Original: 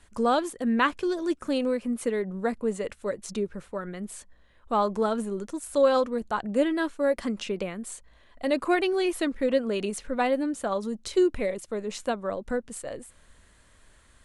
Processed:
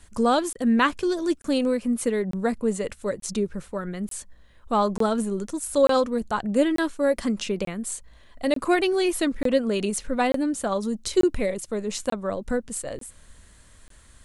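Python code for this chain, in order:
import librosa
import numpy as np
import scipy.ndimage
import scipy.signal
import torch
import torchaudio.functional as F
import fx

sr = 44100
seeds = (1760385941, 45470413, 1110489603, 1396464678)

y = fx.bass_treble(x, sr, bass_db=5, treble_db=6)
y = fx.buffer_crackle(y, sr, first_s=0.53, period_s=0.89, block=1024, kind='zero')
y = y * 10.0 ** (2.0 / 20.0)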